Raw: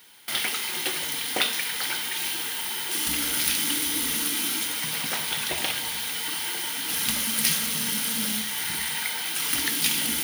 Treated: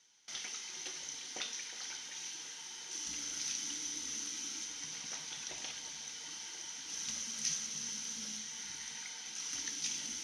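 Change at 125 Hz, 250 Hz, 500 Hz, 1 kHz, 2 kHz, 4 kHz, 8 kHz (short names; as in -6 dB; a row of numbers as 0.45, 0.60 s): -19.5, -19.5, -19.5, -19.5, -19.0, -15.0, -10.0 dB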